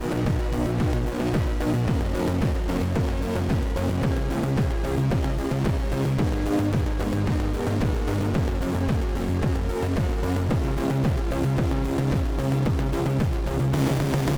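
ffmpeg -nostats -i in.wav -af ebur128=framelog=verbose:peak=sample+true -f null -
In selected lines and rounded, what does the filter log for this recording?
Integrated loudness:
  I:         -24.8 LUFS
  Threshold: -34.8 LUFS
Loudness range:
  LRA:         0.8 LU
  Threshold: -44.9 LUFS
  LRA low:   -25.2 LUFS
  LRA high:  -24.4 LUFS
Sample peak:
  Peak:      -10.9 dBFS
True peak:
  Peak:      -10.9 dBFS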